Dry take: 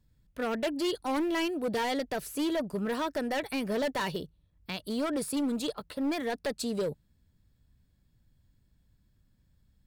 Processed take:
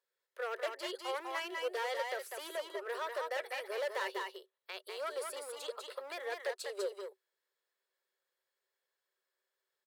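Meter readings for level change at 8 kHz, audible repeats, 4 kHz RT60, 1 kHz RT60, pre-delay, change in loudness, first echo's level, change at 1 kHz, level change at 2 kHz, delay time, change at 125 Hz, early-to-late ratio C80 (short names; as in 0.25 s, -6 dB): -7.0 dB, 1, none, none, none, -7.5 dB, -3.5 dB, -5.0 dB, -3.0 dB, 0.198 s, under -40 dB, none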